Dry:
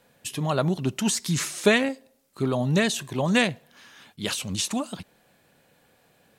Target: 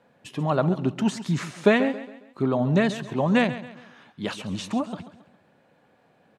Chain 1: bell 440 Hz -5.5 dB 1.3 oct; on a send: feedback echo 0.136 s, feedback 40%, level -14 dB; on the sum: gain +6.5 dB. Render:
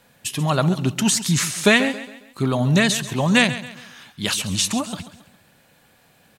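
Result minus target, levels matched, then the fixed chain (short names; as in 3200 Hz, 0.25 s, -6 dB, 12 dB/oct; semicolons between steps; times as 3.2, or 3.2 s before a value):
500 Hz band -4.5 dB
band-pass 450 Hz, Q 0.6; bell 440 Hz -5.5 dB 1.3 oct; on a send: feedback echo 0.136 s, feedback 40%, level -14 dB; on the sum: gain +6.5 dB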